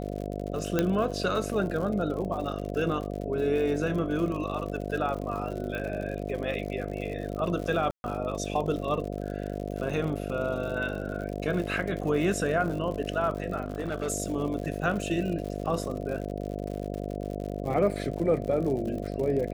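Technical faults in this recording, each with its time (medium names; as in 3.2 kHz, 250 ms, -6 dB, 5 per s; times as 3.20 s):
buzz 50 Hz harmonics 14 -34 dBFS
crackle 89 per s -35 dBFS
0.79 s: pop -11 dBFS
5.75 s: pop -23 dBFS
7.91–8.04 s: dropout 131 ms
13.62–14.08 s: clipped -26 dBFS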